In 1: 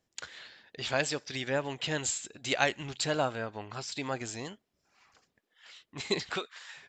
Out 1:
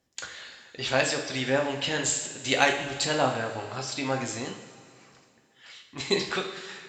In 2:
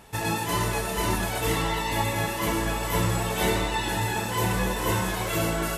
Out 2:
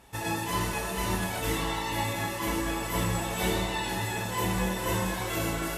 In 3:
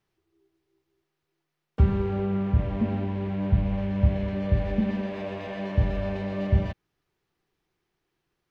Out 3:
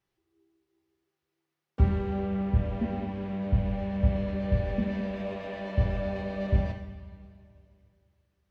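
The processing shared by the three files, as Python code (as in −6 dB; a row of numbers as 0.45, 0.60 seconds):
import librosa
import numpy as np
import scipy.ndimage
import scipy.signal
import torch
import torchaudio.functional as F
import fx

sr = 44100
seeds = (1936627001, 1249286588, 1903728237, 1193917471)

y = fx.cheby_harmonics(x, sr, harmonics=(7,), levels_db=(-34,), full_scale_db=-8.0)
y = fx.rev_double_slope(y, sr, seeds[0], early_s=0.55, late_s=2.6, knee_db=-13, drr_db=2.0)
y = y * 10.0 ** (-30 / 20.0) / np.sqrt(np.mean(np.square(y)))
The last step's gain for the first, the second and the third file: +4.5, −5.0, −3.5 decibels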